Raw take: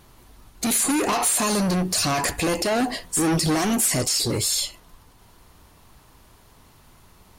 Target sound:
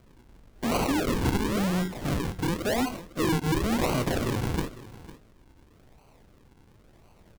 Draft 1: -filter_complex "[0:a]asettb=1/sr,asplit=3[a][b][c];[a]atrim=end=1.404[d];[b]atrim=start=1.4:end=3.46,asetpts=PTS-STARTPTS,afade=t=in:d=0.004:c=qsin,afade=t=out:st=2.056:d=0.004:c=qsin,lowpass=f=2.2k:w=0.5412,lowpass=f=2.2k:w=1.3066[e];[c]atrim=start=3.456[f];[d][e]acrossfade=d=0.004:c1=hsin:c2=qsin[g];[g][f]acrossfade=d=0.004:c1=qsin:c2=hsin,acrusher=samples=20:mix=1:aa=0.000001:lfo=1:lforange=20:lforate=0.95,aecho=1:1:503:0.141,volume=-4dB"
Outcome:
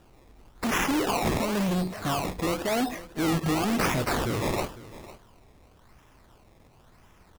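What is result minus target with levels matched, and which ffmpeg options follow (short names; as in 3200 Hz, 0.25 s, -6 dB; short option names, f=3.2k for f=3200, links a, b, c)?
decimation with a swept rate: distortion -7 dB
-filter_complex "[0:a]asettb=1/sr,asplit=3[a][b][c];[a]atrim=end=1.404[d];[b]atrim=start=1.4:end=3.46,asetpts=PTS-STARTPTS,afade=t=in:d=0.004:c=qsin,afade=t=out:st=2.056:d=0.004:c=qsin,lowpass=f=2.2k:w=0.5412,lowpass=f=2.2k:w=1.3066[e];[c]atrim=start=3.456[f];[d][e]acrossfade=d=0.004:c1=hsin:c2=qsin[g];[g][f]acrossfade=d=0.004:c1=qsin:c2=hsin,acrusher=samples=49:mix=1:aa=0.000001:lfo=1:lforange=49:lforate=0.95,aecho=1:1:503:0.141,volume=-4dB"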